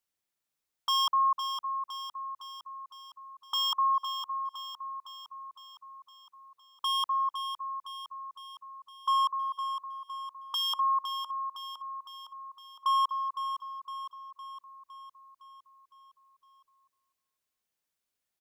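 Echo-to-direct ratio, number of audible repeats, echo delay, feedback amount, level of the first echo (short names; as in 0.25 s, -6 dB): -7.0 dB, 6, 0.51 s, 58%, -9.0 dB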